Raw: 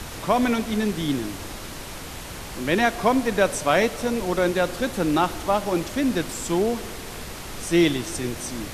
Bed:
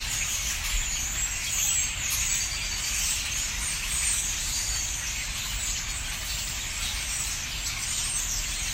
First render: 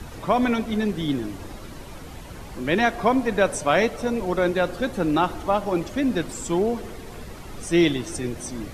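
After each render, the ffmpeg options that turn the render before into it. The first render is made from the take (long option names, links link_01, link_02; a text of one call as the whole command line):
ffmpeg -i in.wav -af "afftdn=noise_reduction=10:noise_floor=-36" out.wav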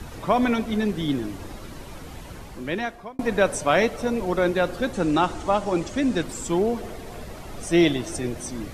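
ffmpeg -i in.wav -filter_complex "[0:a]asettb=1/sr,asplit=3[link_01][link_02][link_03];[link_01]atrim=end=4.934[link_04];[link_02]atrim=start=4.93:end=6.23,asetpts=PTS-STARTPTS,afade=type=in:duration=0.004:curve=qsin,afade=type=out:start_time=1.296:duration=0.004:curve=qsin,lowpass=frequency=7900:width_type=q:width=1.8[link_05];[link_03]atrim=start=6.226[link_06];[link_04][link_05]acrossfade=duration=0.004:curve1=hsin:curve2=qsin[link_07];[link_07][link_06]acrossfade=duration=0.004:curve1=qsin:curve2=hsin,asettb=1/sr,asplit=3[link_08][link_09][link_10];[link_08]atrim=end=6.814[link_11];[link_09]atrim=start=6.81:end=8.38,asetpts=PTS-STARTPTS,afade=type=in:duration=0.004:curve=qsin,afade=type=out:start_time=1.566:duration=0.004:curve=qsin,equalizer=frequency=650:width_type=o:width=0.42:gain=6.5[link_12];[link_10]atrim=start=8.376[link_13];[link_11][link_12]acrossfade=duration=0.004:curve1=hsin:curve2=qsin[link_14];[link_14][link_13]acrossfade=duration=0.004:curve1=qsin:curve2=hsin,asplit=2[link_15][link_16];[link_15]atrim=end=3.19,asetpts=PTS-STARTPTS,afade=type=out:start_time=2.29:duration=0.9[link_17];[link_16]atrim=start=3.19,asetpts=PTS-STARTPTS,afade=type=in:duration=0.004:curve=hsin[link_18];[link_17][link_18]concat=n=2:v=0:a=1" out.wav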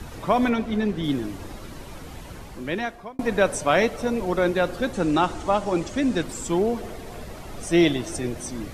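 ffmpeg -i in.wav -filter_complex "[0:a]asettb=1/sr,asplit=3[link_01][link_02][link_03];[link_01]atrim=end=0.494[link_04];[link_02]atrim=start=0.49:end=1.04,asetpts=PTS-STARTPTS,afade=type=in:duration=0.004:curve=qsin,afade=type=out:start_time=0.546:duration=0.004:curve=qsin,lowpass=frequency=3800:poles=1[link_05];[link_03]atrim=start=1.036[link_06];[link_04][link_05]acrossfade=duration=0.004:curve1=hsin:curve2=qsin[link_07];[link_07][link_06]acrossfade=duration=0.004:curve1=qsin:curve2=hsin" out.wav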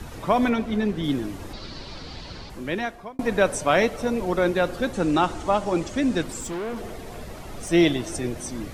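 ffmpeg -i in.wav -filter_complex "[0:a]asettb=1/sr,asplit=3[link_01][link_02][link_03];[link_01]atrim=end=1.534[link_04];[link_02]atrim=start=1.53:end=2.5,asetpts=PTS-STARTPTS,afade=type=in:duration=0.004:curve=qsin,afade=type=out:start_time=0.966:duration=0.004:curve=qsin,lowpass=frequency=4500:width_type=q:width=5.3[link_05];[link_03]atrim=start=2.496[link_06];[link_04][link_05]acrossfade=duration=0.004:curve1=hsin:curve2=qsin[link_07];[link_07][link_06]acrossfade=duration=0.004:curve1=qsin:curve2=hsin,asettb=1/sr,asplit=3[link_08][link_09][link_10];[link_08]atrim=end=6.404[link_11];[link_09]atrim=start=6.4:end=7.7,asetpts=PTS-STARTPTS,afade=type=in:duration=0.004:curve=qsin,afade=type=out:start_time=1.296:duration=0.004:curve=qsin,asoftclip=type=hard:threshold=-28dB[link_12];[link_10]atrim=start=7.696[link_13];[link_11][link_12]acrossfade=duration=0.004:curve1=hsin:curve2=qsin[link_14];[link_14][link_13]acrossfade=duration=0.004:curve1=qsin:curve2=hsin" out.wav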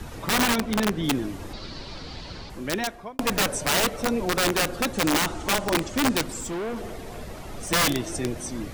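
ffmpeg -i in.wav -af "aeval=exprs='(mod(6.31*val(0)+1,2)-1)/6.31':channel_layout=same" out.wav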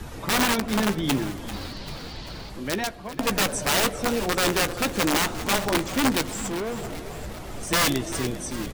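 ffmpeg -i in.wav -filter_complex "[0:a]asplit=2[link_01][link_02];[link_02]adelay=15,volume=-13dB[link_03];[link_01][link_03]amix=inputs=2:normalize=0,asplit=8[link_04][link_05][link_06][link_07][link_08][link_09][link_10][link_11];[link_05]adelay=392,afreqshift=-63,volume=-13.5dB[link_12];[link_06]adelay=784,afreqshift=-126,volume=-17.8dB[link_13];[link_07]adelay=1176,afreqshift=-189,volume=-22.1dB[link_14];[link_08]adelay=1568,afreqshift=-252,volume=-26.4dB[link_15];[link_09]adelay=1960,afreqshift=-315,volume=-30.7dB[link_16];[link_10]adelay=2352,afreqshift=-378,volume=-35dB[link_17];[link_11]adelay=2744,afreqshift=-441,volume=-39.3dB[link_18];[link_04][link_12][link_13][link_14][link_15][link_16][link_17][link_18]amix=inputs=8:normalize=0" out.wav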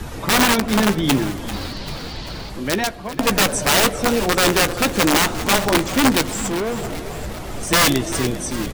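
ffmpeg -i in.wav -af "volume=6.5dB" out.wav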